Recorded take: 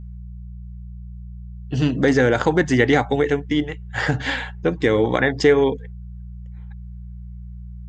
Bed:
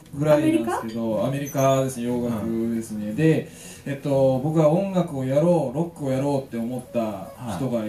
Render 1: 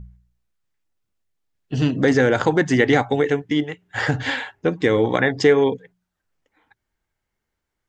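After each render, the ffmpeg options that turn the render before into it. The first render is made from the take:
ffmpeg -i in.wav -af "bandreject=frequency=60:width_type=h:width=4,bandreject=frequency=120:width_type=h:width=4,bandreject=frequency=180:width_type=h:width=4" out.wav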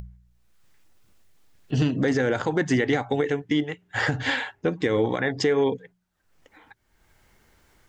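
ffmpeg -i in.wav -af "alimiter=limit=-12.5dB:level=0:latency=1:release=207,acompressor=mode=upward:threshold=-42dB:ratio=2.5" out.wav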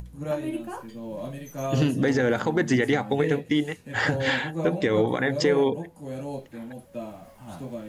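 ffmpeg -i in.wav -i bed.wav -filter_complex "[1:a]volume=-11dB[link_01];[0:a][link_01]amix=inputs=2:normalize=0" out.wav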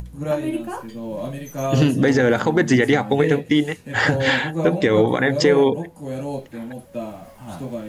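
ffmpeg -i in.wav -af "volume=6dB" out.wav

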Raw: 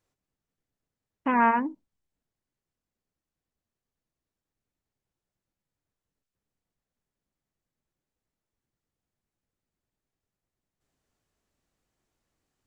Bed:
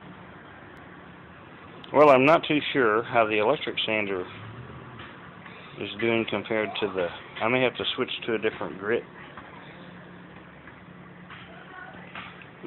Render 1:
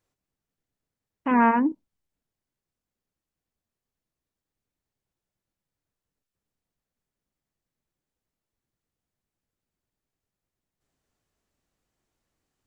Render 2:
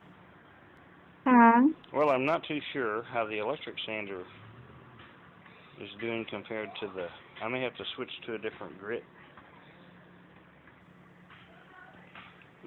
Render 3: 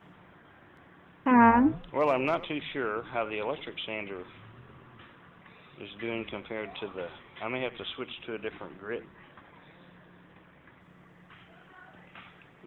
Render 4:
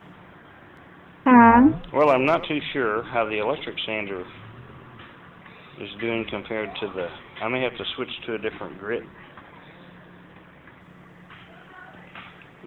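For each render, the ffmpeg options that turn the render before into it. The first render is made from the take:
ffmpeg -i in.wav -filter_complex "[0:a]asettb=1/sr,asplit=3[link_01][link_02][link_03];[link_01]atrim=end=1.314[link_04];[link_02]atrim=start=1.31:end=1.72,asetpts=PTS-STARTPTS,afade=type=in:duration=0.004:curve=qsin,afade=type=out:start_time=0.406:duration=0.004:curve=qsin,equalizer=frequency=310:width=1.2:gain=9[link_05];[link_03]atrim=start=1.716[link_06];[link_04][link_05]acrossfade=duration=0.004:curve1=hsin:curve2=qsin[link_07];[link_07][link_06]acrossfade=duration=0.004:curve1=qsin:curve2=hsin" out.wav
ffmpeg -i in.wav -i bed.wav -filter_complex "[1:a]volume=-10dB[link_01];[0:a][link_01]amix=inputs=2:normalize=0" out.wav
ffmpeg -i in.wav -filter_complex "[0:a]asplit=4[link_01][link_02][link_03][link_04];[link_02]adelay=90,afreqshift=-140,volume=-18.5dB[link_05];[link_03]adelay=180,afreqshift=-280,volume=-25.8dB[link_06];[link_04]adelay=270,afreqshift=-420,volume=-33.2dB[link_07];[link_01][link_05][link_06][link_07]amix=inputs=4:normalize=0" out.wav
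ffmpeg -i in.wav -af "volume=8dB,alimiter=limit=-2dB:level=0:latency=1" out.wav

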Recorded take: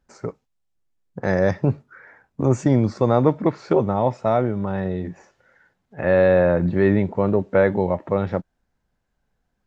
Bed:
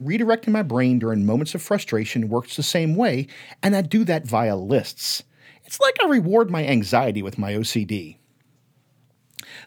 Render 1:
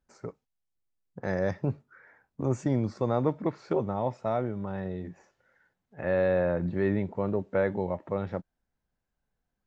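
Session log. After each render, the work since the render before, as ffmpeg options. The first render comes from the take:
ffmpeg -i in.wav -af "volume=-9.5dB" out.wav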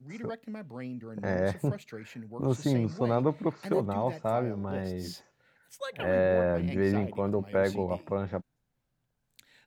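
ffmpeg -i in.wav -i bed.wav -filter_complex "[1:a]volume=-20.5dB[link_01];[0:a][link_01]amix=inputs=2:normalize=0" out.wav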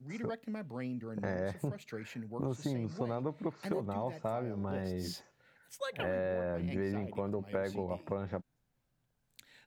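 ffmpeg -i in.wav -af "acompressor=threshold=-32dB:ratio=5" out.wav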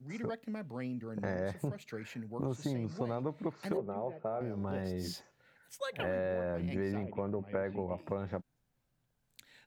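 ffmpeg -i in.wav -filter_complex "[0:a]asettb=1/sr,asplit=3[link_01][link_02][link_03];[link_01]atrim=end=3.774[link_04];[link_02]atrim=start=3.77:end=4.41,asetpts=PTS-STARTPTS,afade=type=in:duration=0.004:curve=qsin,afade=type=out:start_time=0.636:duration=0.004:curve=qsin,highpass=170,equalizer=frequency=270:width_type=q:width=4:gain=-10,equalizer=frequency=400:width_type=q:width=4:gain=6,equalizer=frequency=990:width_type=q:width=4:gain=-7,equalizer=frequency=1900:width_type=q:width=4:gain=-9,lowpass=frequency=2200:width=0.5412,lowpass=frequency=2200:width=1.3066[link_05];[link_03]atrim=start=4.406[link_06];[link_04][link_05]acrossfade=duration=0.004:curve1=hsin:curve2=qsin[link_07];[link_07][link_06]acrossfade=duration=0.004:curve1=qsin:curve2=hsin,asettb=1/sr,asplit=3[link_08][link_09][link_10];[link_08]atrim=end=7.034[link_11];[link_09]atrim=start=7.03:end=7.98,asetpts=PTS-STARTPTS,afade=type=in:duration=0.004:curve=qsin,afade=type=out:start_time=0.946:duration=0.004:curve=qsin,lowpass=frequency=2500:width=0.5412,lowpass=frequency=2500:width=1.3066[link_12];[link_10]atrim=start=7.976[link_13];[link_11][link_12]acrossfade=duration=0.004:curve1=hsin:curve2=qsin[link_14];[link_14][link_13]acrossfade=duration=0.004:curve1=qsin:curve2=hsin" out.wav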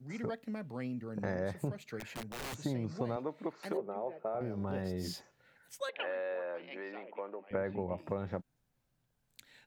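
ffmpeg -i in.wav -filter_complex "[0:a]asettb=1/sr,asplit=3[link_01][link_02][link_03];[link_01]atrim=end=2.004[link_04];[link_02]atrim=start=2:end=2.62,asetpts=PTS-STARTPTS,afade=type=in:duration=0.004:curve=qsin,afade=type=out:start_time=0.616:duration=0.004:curve=qsin,aeval=exprs='(mod(66.8*val(0)+1,2)-1)/66.8':channel_layout=same[link_05];[link_03]atrim=start=2.616[link_06];[link_04][link_05]acrossfade=duration=0.004:curve1=hsin:curve2=qsin[link_07];[link_07][link_06]acrossfade=duration=0.004:curve1=qsin:curve2=hsin,asettb=1/sr,asplit=3[link_08][link_09][link_10];[link_08]atrim=end=3.164[link_11];[link_09]atrim=start=3.16:end=4.35,asetpts=PTS-STARTPTS,afade=type=in:duration=0.004:curve=qsin,afade=type=out:start_time=1.186:duration=0.004:curve=qsin,highpass=280[link_12];[link_10]atrim=start=4.346[link_13];[link_11][link_12]acrossfade=duration=0.004:curve1=hsin:curve2=qsin[link_14];[link_14][link_13]acrossfade=duration=0.004:curve1=qsin:curve2=hsin,asettb=1/sr,asplit=3[link_15][link_16][link_17];[link_15]atrim=end=5.894[link_18];[link_16]atrim=start=5.89:end=7.51,asetpts=PTS-STARTPTS,afade=type=in:duration=0.004:curve=qsin,afade=type=out:start_time=1.616:duration=0.004:curve=qsin,highpass=frequency=370:width=0.5412,highpass=frequency=370:width=1.3066,equalizer=frequency=400:width_type=q:width=4:gain=-7,equalizer=frequency=670:width_type=q:width=4:gain=-4,equalizer=frequency=2800:width_type=q:width=4:gain=4,lowpass=frequency=4100:width=0.5412,lowpass=frequency=4100:width=1.3066[link_19];[link_17]atrim=start=7.506[link_20];[link_18][link_19]acrossfade=duration=0.004:curve1=hsin:curve2=qsin[link_21];[link_21][link_20]acrossfade=duration=0.004:curve1=qsin:curve2=hsin" out.wav

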